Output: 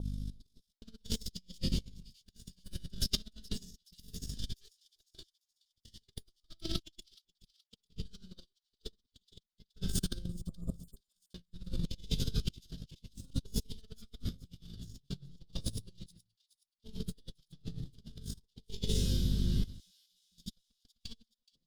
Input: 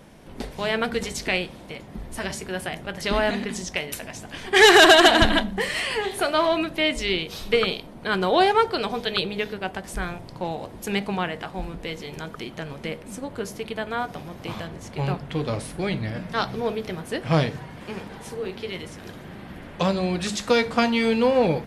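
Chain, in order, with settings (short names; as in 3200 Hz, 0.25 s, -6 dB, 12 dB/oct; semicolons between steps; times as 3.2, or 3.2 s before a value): minimum comb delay 0.59 ms; passive tone stack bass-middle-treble 10-0-1; shoebox room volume 570 m³, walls mixed, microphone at 7.9 m; spectral delete 10.24–11.13, 1300–7000 Hz; resonator bank F2 major, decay 0.46 s; hum 50 Hz, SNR 20 dB; chopper 0.56 Hz, depth 65%, duty 45%; negative-ratio compressor -54 dBFS, ratio -0.5; expander -60 dBFS; resonant high shelf 2900 Hz +11.5 dB, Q 3; on a send: thin delay 0.423 s, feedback 43%, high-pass 3300 Hz, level -20 dB; on the sum: gain +10.5 dB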